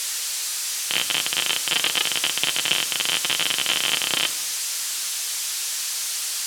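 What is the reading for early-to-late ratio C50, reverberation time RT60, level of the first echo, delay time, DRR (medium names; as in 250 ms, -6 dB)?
14.5 dB, 1.0 s, no echo, no echo, 7.5 dB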